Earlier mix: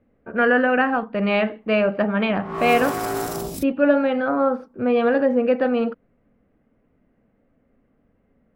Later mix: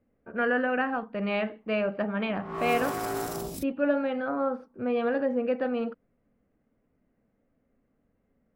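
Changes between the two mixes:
speech -8.5 dB; background -6.0 dB

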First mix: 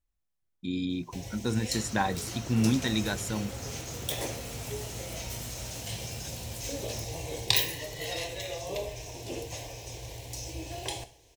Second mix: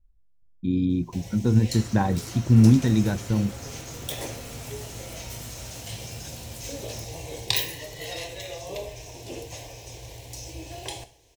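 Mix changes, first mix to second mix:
speech: add tilt EQ -4 dB/octave; second sound: send on

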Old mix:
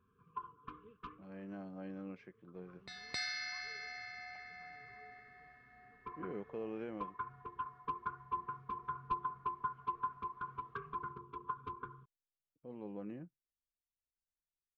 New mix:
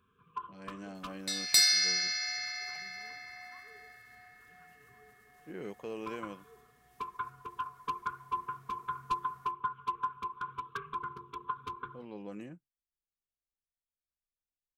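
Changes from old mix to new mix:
speech: entry -0.70 s; second sound: entry -1.60 s; master: remove tape spacing loss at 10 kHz 40 dB

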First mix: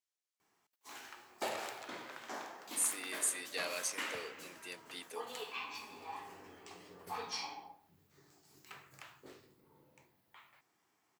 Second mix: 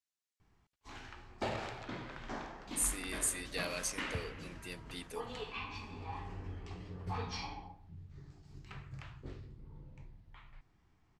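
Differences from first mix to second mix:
background: add low-pass 4.6 kHz 12 dB/octave; master: remove high-pass 390 Hz 12 dB/octave

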